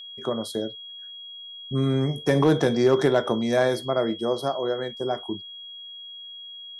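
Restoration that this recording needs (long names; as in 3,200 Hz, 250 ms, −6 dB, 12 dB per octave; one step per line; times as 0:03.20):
clipped peaks rebuilt −11 dBFS
notch filter 3,300 Hz, Q 30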